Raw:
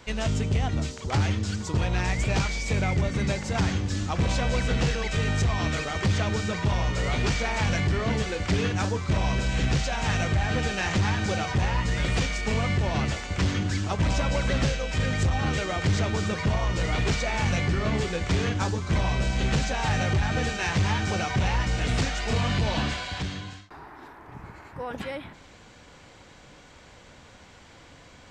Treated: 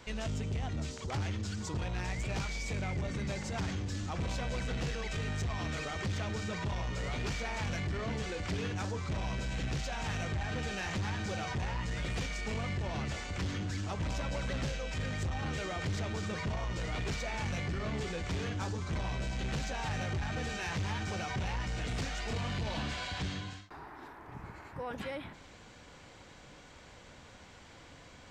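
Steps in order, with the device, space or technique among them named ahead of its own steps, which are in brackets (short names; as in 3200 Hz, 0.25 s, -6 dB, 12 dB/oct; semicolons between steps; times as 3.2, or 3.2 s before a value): soft clipper into limiter (soft clip -21 dBFS, distortion -18 dB; limiter -27 dBFS, peak gain reduction 5 dB); gain -3.5 dB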